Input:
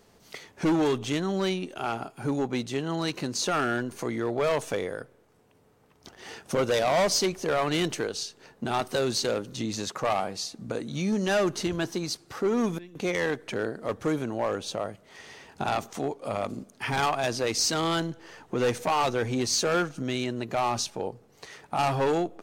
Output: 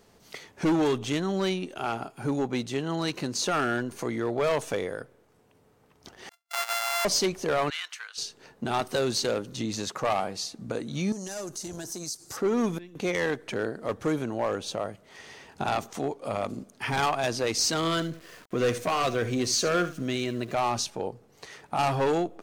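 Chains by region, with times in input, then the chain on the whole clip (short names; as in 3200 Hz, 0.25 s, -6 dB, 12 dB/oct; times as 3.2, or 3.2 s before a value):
6.29–7.05 sample sorter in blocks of 64 samples + gate -40 dBFS, range -32 dB + HPF 940 Hz 24 dB/oct
7.7–8.18 HPF 1300 Hz 24 dB/oct + high shelf 4500 Hz -10.5 dB
11.12–12.37 resonant high shelf 4500 Hz +14 dB, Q 1.5 + compressor 4:1, threshold -33 dBFS + core saturation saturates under 620 Hz
17.77–20.54 echo 74 ms -14 dB + sample gate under -47 dBFS + Butterworth band-stop 860 Hz, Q 5.1
whole clip: dry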